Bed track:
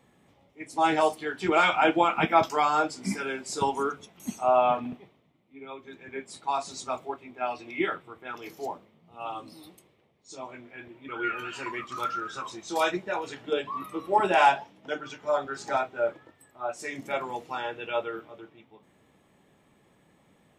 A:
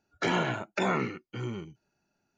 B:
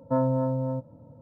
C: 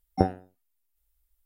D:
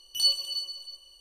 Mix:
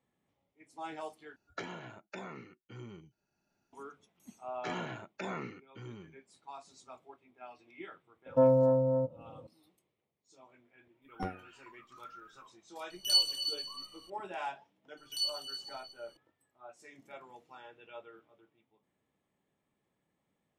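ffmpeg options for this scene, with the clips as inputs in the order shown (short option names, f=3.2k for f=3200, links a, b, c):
-filter_complex "[1:a]asplit=2[a][b];[4:a]asplit=2[c][d];[0:a]volume=-19dB[e];[a]acompressor=threshold=-40dB:ratio=12:attack=69:release=987:knee=1:detection=rms[f];[2:a]equalizer=f=490:t=o:w=0.76:g=10.5[g];[3:a]aeval=exprs='clip(val(0),-1,0.133)':c=same[h];[e]asplit=2[i][j];[i]atrim=end=1.364[k];[f]atrim=end=2.37,asetpts=PTS-STARTPTS,volume=-2dB[l];[j]atrim=start=3.726[m];[b]atrim=end=2.37,asetpts=PTS-STARTPTS,volume=-11.5dB,afade=t=in:d=0.004:c=hsin,afade=t=out:st=2.366:d=0.004:c=hsin,adelay=4420[n];[g]atrim=end=1.21,asetpts=PTS-STARTPTS,volume=-5.5dB,afade=t=in:d=0.004:c=hsin,afade=t=out:st=1.206:d=0.004:c=hsin,adelay=364266S[o];[h]atrim=end=1.45,asetpts=PTS-STARTPTS,volume=-10.5dB,afade=t=in:d=0.004:c=hsin,afade=t=out:st=1.446:d=0.004:c=hsin,adelay=11020[p];[c]atrim=end=1.2,asetpts=PTS-STARTPTS,volume=-2.5dB,afade=t=in:d=0.004:c=hsin,afade=t=out:st=1.196:d=0.004:c=hsin,adelay=12900[q];[d]atrim=end=1.2,asetpts=PTS-STARTPTS,volume=-10dB,afade=t=in:d=0.004:c=hsin,afade=t=out:st=1.196:d=0.004:c=hsin,adelay=14970[r];[k][l]acrossfade=d=0.004:c1=hsin:c2=hsin[s];[s][m]acrossfade=d=0.004:c1=hsin:c2=hsin[t];[t][n][o][p][q][r]amix=inputs=6:normalize=0"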